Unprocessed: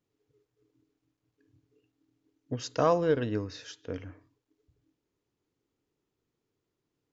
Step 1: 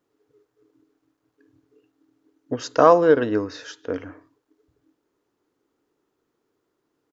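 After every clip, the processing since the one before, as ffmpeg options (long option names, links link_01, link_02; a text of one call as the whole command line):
ffmpeg -i in.wav -af "firequalizer=gain_entry='entry(120,0);entry(290,11);entry(1400,14);entry(2300,6)':delay=0.05:min_phase=1,volume=-1dB" out.wav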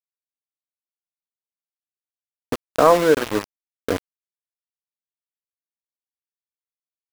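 ffmpeg -i in.wav -af "dynaudnorm=framelen=170:gausssize=5:maxgain=5.5dB,aeval=exprs='val(0)*gte(abs(val(0)),0.106)':channel_layout=same" out.wav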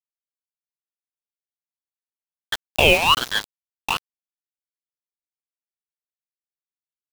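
ffmpeg -i in.wav -af "afreqshift=450,acrusher=bits=3:mix=0:aa=0.5,aeval=exprs='val(0)*sin(2*PI*2000*n/s+2000*0.25/1.2*sin(2*PI*1.2*n/s))':channel_layout=same,volume=1.5dB" out.wav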